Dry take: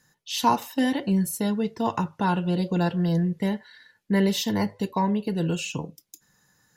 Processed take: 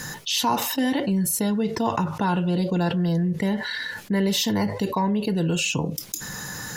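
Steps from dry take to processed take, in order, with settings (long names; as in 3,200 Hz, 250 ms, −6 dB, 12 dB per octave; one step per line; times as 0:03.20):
envelope flattener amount 70%
level −3.5 dB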